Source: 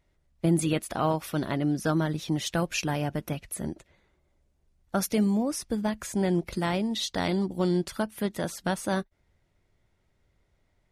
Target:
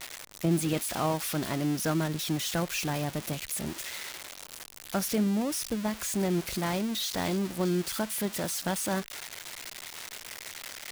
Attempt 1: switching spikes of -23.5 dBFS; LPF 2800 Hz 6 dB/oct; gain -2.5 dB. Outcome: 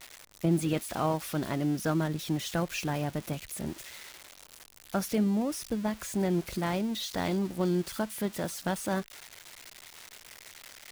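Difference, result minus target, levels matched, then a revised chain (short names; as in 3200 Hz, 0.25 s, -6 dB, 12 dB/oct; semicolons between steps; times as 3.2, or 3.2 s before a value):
switching spikes: distortion -7 dB
switching spikes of -16 dBFS; LPF 2800 Hz 6 dB/oct; gain -2.5 dB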